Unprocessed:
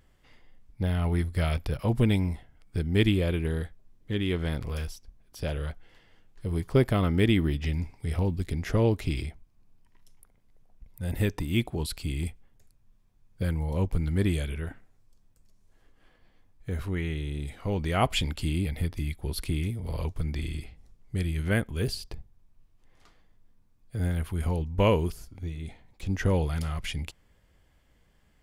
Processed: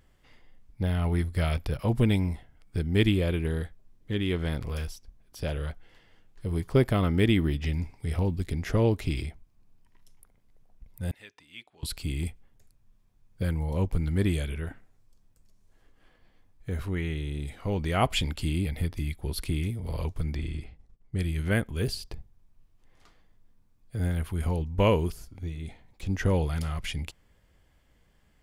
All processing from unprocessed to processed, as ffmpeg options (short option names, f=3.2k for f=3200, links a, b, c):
-filter_complex "[0:a]asettb=1/sr,asplit=3[a][b][c];[a]atrim=end=11.114[d];[b]atrim=start=11.11:end=11.83,asetpts=PTS-STARTPTS,afade=t=in:d=0.004:c=qsin,afade=t=out:st=0.716:d=0.004:c=qsin,lowpass=3k,aderivative,bandreject=f=350:w=11[e];[c]atrim=start=11.826[f];[d][e]acrossfade=d=0.004:c1=hsin:c2=qsin[g];[g][f]acrossfade=d=0.004:c1=qsin:c2=hsin,asettb=1/sr,asplit=3[h][i][j];[h]atrim=end=20.364[k];[i]atrim=start=20.36:end=21.19,asetpts=PTS-STARTPTS,afade=t=in:d=0.004:c=qsin,afade=t=out:st=0.826:d=0.004:c=qsin,lowpass=f=11k:w=0.5412,lowpass=f=11k:w=1.3066,highshelf=f=3.1k:g=-8.5,agate=range=-33dB:threshold=-49dB:ratio=3:release=100:detection=peak[l];[j]atrim=start=21.186[m];[k][l]acrossfade=d=0.004:c1=hsin:c2=qsin[n];[n][m]acrossfade=d=0.004:c1=qsin:c2=hsin"